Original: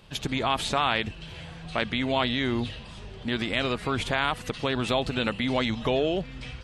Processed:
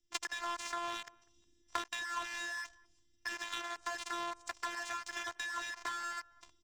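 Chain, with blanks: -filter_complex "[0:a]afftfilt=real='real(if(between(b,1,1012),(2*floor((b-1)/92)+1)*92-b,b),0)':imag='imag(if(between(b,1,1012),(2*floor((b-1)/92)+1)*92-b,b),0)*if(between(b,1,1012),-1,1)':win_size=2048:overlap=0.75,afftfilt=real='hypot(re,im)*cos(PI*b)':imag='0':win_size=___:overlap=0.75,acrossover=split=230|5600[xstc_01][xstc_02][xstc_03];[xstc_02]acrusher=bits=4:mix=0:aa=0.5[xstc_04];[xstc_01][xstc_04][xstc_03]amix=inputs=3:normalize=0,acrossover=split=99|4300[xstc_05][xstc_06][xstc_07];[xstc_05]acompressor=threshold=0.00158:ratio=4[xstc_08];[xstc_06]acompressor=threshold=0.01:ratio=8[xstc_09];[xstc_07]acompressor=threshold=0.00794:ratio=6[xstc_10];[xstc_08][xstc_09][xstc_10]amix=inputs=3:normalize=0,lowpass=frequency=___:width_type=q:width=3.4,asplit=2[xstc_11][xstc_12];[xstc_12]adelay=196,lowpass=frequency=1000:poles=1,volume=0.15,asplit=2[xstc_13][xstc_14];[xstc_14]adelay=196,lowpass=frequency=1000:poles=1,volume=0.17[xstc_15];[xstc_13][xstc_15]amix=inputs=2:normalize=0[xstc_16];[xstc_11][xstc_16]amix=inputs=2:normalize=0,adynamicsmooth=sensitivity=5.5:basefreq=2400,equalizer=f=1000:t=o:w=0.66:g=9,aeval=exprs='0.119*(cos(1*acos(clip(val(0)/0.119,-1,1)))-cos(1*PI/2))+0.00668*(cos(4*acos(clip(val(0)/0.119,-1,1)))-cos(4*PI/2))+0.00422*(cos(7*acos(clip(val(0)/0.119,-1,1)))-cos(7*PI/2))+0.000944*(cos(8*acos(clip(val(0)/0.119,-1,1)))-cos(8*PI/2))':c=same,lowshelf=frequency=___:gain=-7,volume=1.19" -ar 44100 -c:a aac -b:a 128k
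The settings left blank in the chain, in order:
512, 7400, 170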